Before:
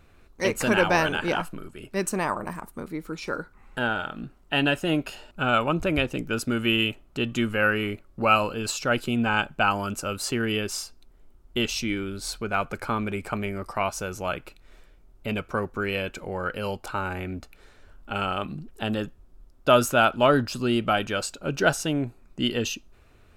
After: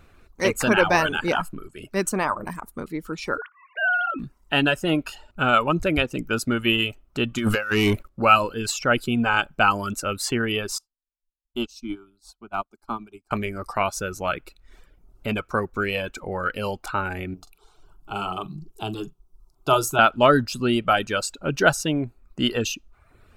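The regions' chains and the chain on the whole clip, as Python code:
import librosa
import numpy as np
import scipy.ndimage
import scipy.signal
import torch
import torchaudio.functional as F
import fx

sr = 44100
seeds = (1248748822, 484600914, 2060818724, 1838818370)

y = fx.chain(x, sr, fx.sine_speech(),
    fx.transient(attack_db=-1, sustain_db=10), at=(3.38, 4.19))
y = fx.chain(y, sr, fx.high_shelf(hz=5300.0, db=5.0),
    fx.over_compress(threshold_db=-28.0, ratio=-0.5),
    fx.leveller(passes=2), at=(7.38, 8.09))
y = fx.chain(y, sr, fx.high_shelf(hz=5400.0, db=-5.0),
    fx.fixed_phaser(hz=500.0, stages=6),
    fx.upward_expand(threshold_db=-50.0, expansion=2.5), at=(10.78, 13.31))
y = fx.chain(y, sr, fx.fixed_phaser(hz=360.0, stages=8),
    fx.doubler(ms=44.0, db=-10.0), at=(17.34, 19.99))
y = fx.dereverb_blind(y, sr, rt60_s=0.67)
y = fx.peak_eq(y, sr, hz=1300.0, db=2.5, octaves=0.43)
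y = F.gain(torch.from_numpy(y), 3.0).numpy()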